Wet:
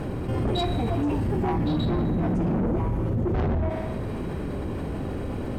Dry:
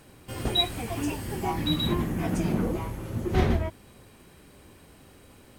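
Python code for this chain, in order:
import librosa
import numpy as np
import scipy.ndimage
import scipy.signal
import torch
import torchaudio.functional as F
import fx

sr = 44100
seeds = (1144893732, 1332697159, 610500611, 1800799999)

y = fx.lowpass(x, sr, hz=1600.0, slope=6)
y = fx.tilt_shelf(y, sr, db=5.0, hz=970.0)
y = fx.echo_thinned(y, sr, ms=63, feedback_pct=73, hz=420.0, wet_db=-13.5)
y = 10.0 ** (-24.5 / 20.0) * np.tanh(y / 10.0 ** (-24.5 / 20.0))
y = fx.env_flatten(y, sr, amount_pct=70)
y = y * librosa.db_to_amplitude(2.5)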